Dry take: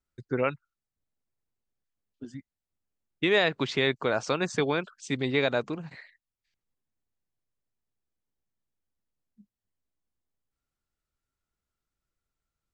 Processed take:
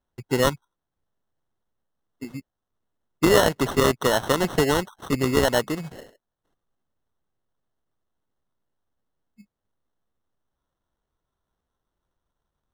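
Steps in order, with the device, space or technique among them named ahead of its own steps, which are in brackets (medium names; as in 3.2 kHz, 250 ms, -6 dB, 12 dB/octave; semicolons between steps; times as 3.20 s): crushed at another speed (playback speed 0.5×; sample-and-hold 37×; playback speed 2×); trim +6 dB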